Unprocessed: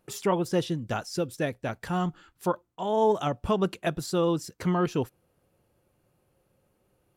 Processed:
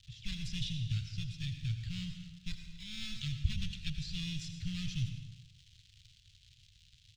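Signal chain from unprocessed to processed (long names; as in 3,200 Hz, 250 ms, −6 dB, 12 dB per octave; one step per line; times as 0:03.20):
one-sided soft clipper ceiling −29 dBFS
low-pass that shuts in the quiet parts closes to 1,300 Hz, open at −24.5 dBFS
high-shelf EQ 8,600 Hz +6.5 dB
surface crackle 280 per second −40 dBFS
in parallel at −5 dB: sample-rate reduction 3,000 Hz, jitter 0%
on the sum: elliptic band-stop filter 110–3,100 Hz, stop band 80 dB
high-frequency loss of the air 150 metres
slap from a distant wall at 43 metres, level −16 dB
on a send at −6 dB: convolution reverb RT60 0.90 s, pre-delay 72 ms
on the sum: level +3.5 dB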